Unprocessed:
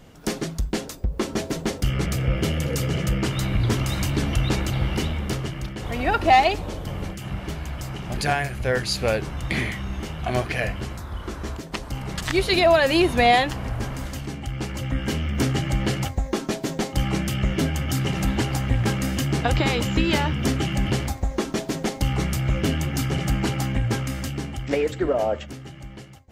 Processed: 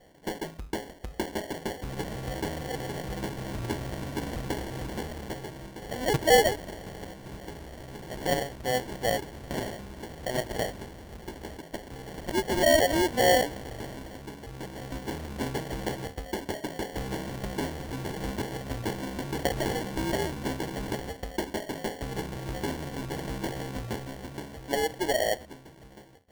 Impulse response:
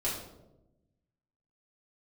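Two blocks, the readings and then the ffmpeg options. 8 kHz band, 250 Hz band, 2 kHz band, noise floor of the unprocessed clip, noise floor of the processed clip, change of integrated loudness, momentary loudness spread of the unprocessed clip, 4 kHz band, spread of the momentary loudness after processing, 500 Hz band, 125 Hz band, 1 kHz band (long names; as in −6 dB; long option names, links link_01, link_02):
−4.0 dB, −8.0 dB, −6.5 dB, −38 dBFS, −48 dBFS, −6.5 dB, 13 LU, −6.5 dB, 17 LU, −3.5 dB, −13.0 dB, −7.0 dB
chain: -af "bass=frequency=250:gain=-12,treble=frequency=4000:gain=-15,acrusher=samples=35:mix=1:aa=0.000001,volume=-3.5dB"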